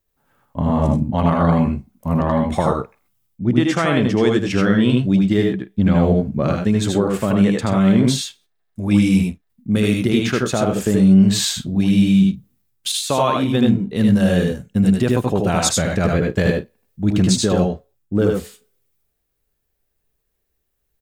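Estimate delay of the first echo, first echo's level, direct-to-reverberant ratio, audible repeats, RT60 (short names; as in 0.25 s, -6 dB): 78 ms, -3.5 dB, none, 2, none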